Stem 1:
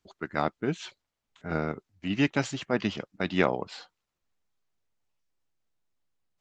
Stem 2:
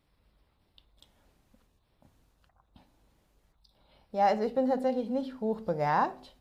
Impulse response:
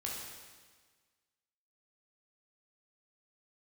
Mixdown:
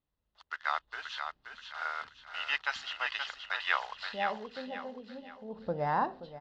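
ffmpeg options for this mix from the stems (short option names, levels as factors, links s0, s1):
-filter_complex "[0:a]acrusher=bits=8:dc=4:mix=0:aa=0.000001,highpass=f=1000:w=0.5412,highpass=f=1000:w=1.3066,adelay=300,volume=1.19,asplit=2[s0][s1];[s1]volume=0.473[s2];[1:a]volume=1.88,afade=t=in:st=0.55:d=0.39:silence=0.334965,afade=t=out:st=4.1:d=0.36:silence=0.375837,afade=t=in:st=5.47:d=0.23:silence=0.251189,asplit=2[s3][s4];[s4]volume=0.211[s5];[s2][s5]amix=inputs=2:normalize=0,aecho=0:1:527|1054|1581|2108|2635:1|0.37|0.137|0.0507|0.0187[s6];[s0][s3][s6]amix=inputs=3:normalize=0,lowpass=f=4500:w=0.5412,lowpass=f=4500:w=1.3066,bandreject=f=2300:w=6.4"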